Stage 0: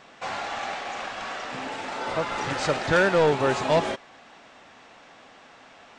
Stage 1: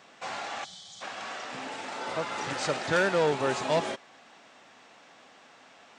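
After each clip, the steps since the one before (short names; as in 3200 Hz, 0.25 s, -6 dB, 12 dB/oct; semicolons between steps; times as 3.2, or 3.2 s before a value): HPF 120 Hz 12 dB/oct; spectral gain 0.65–1.02, 200–3000 Hz -22 dB; high shelf 5500 Hz +7 dB; gain -5 dB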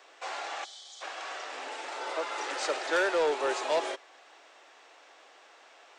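steep high-pass 320 Hz 48 dB/oct; in parallel at -9.5 dB: hard clip -23.5 dBFS, distortion -12 dB; on the sum: gain -3.5 dB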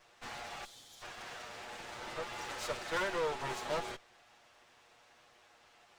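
minimum comb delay 8.4 ms; gain -6 dB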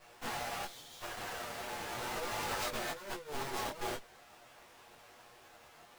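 half-waves squared off; negative-ratio compressor -36 dBFS, ratio -0.5; detuned doubles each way 14 cents; gain +2 dB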